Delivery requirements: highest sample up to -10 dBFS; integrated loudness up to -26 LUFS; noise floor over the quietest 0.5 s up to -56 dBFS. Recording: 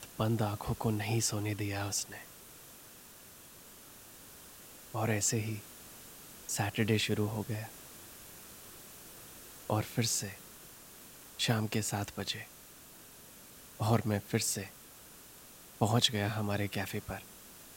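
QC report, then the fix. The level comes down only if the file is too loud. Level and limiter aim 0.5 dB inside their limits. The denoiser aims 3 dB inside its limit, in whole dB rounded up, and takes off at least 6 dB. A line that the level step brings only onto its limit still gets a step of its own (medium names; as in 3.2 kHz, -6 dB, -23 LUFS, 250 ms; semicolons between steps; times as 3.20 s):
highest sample -12.5 dBFS: pass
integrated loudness -33.5 LUFS: pass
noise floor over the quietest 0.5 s -54 dBFS: fail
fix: noise reduction 6 dB, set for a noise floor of -54 dBFS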